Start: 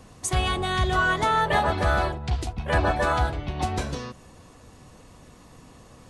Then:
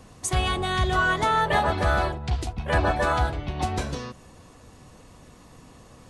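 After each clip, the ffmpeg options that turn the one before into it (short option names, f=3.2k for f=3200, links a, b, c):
-af anull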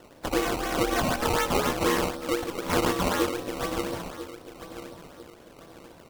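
-filter_complex "[0:a]asplit=2[a][b];[b]adelay=990,lowpass=f=1k:p=1,volume=-12dB,asplit=2[c][d];[d]adelay=990,lowpass=f=1k:p=1,volume=0.41,asplit=2[e][f];[f]adelay=990,lowpass=f=1k:p=1,volume=0.41,asplit=2[g][h];[h]adelay=990,lowpass=f=1k:p=1,volume=0.41[i];[a][c][e][g][i]amix=inputs=5:normalize=0,aeval=exprs='val(0)*sin(2*PI*410*n/s)':c=same,acrusher=samples=18:mix=1:aa=0.000001:lfo=1:lforange=18:lforate=4"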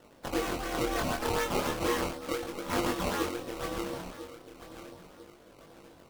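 -af "flanger=delay=20:depth=7.6:speed=0.36,volume=-2.5dB"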